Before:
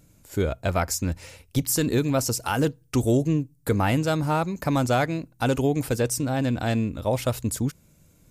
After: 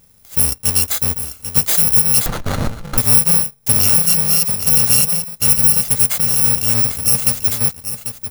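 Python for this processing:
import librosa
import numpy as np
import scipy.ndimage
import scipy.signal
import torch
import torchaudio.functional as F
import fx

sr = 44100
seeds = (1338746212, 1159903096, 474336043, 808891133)

p1 = fx.bit_reversed(x, sr, seeds[0], block=128)
p2 = np.where(np.abs(p1) >= 10.0 ** (-36.0 / 20.0), p1, 0.0)
p3 = p1 + (p2 * librosa.db_to_amplitude(-11.0))
p4 = fx.high_shelf(p3, sr, hz=7100.0, db=7.5)
p5 = p4 + 10.0 ** (-10.0 / 20.0) * np.pad(p4, (int(792 * sr / 1000.0), 0))[:len(p4)]
p6 = fx.running_max(p5, sr, window=17, at=(2.26, 2.98))
y = p6 * librosa.db_to_amplitude(1.5)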